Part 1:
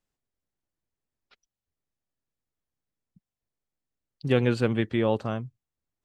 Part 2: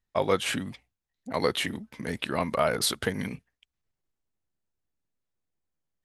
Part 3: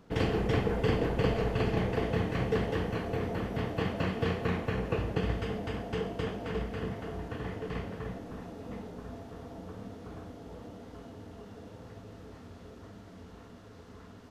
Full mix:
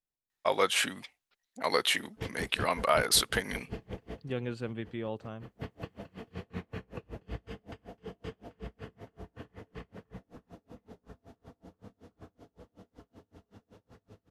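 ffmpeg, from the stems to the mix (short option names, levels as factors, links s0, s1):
-filter_complex "[0:a]volume=0.237,asplit=2[s0][s1];[1:a]highpass=f=830:p=1,adelay=300,volume=1.33[s2];[2:a]acrossover=split=380|3000[s3][s4][s5];[s4]acompressor=threshold=0.0158:ratio=2.5[s6];[s3][s6][s5]amix=inputs=3:normalize=0,aeval=exprs='val(0)*pow(10,-35*(0.5-0.5*cos(2*PI*5.3*n/s))/20)':c=same,adelay=2050,volume=0.631[s7];[s1]apad=whole_len=721197[s8];[s7][s8]sidechaincompress=threshold=0.00316:ratio=12:attack=35:release=272[s9];[s0][s2][s9]amix=inputs=3:normalize=0"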